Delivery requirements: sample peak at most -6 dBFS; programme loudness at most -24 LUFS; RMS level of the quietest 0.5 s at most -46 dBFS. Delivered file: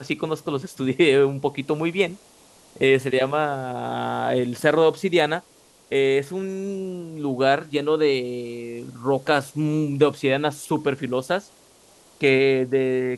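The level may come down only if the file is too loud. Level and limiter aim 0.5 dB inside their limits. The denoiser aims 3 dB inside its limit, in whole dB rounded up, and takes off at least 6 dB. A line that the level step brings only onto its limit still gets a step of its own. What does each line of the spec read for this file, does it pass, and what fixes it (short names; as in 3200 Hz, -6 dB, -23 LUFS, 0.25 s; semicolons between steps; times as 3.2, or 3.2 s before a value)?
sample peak -4.5 dBFS: fail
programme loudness -22.5 LUFS: fail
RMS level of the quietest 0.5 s -54 dBFS: OK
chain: gain -2 dB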